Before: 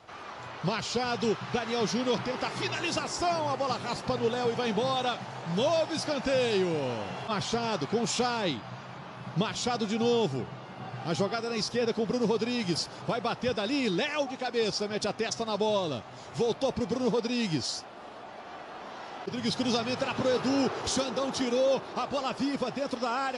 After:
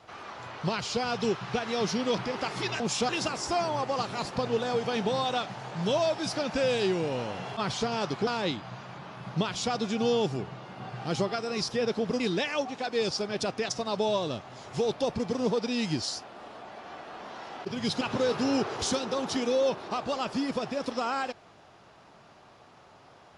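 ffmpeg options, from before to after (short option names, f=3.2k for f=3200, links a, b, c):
-filter_complex "[0:a]asplit=6[a][b][c][d][e][f];[a]atrim=end=2.802[g];[b]atrim=start=7.978:end=8.272[h];[c]atrim=start=2.798:end=7.982[i];[d]atrim=start=8.268:end=12.202[j];[e]atrim=start=13.808:end=19.622[k];[f]atrim=start=20.058[l];[g][h]acrossfade=d=0.004:c1=hsin:c2=hsin[m];[m][i]acrossfade=d=0.004:c1=hsin:c2=hsin[n];[n][j]acrossfade=d=0.004:c1=hsin:c2=hsin[o];[o][k]acrossfade=d=0.004:c1=hsin:c2=hsin[p];[p][l]acrossfade=d=0.004:c1=hsin:c2=hsin"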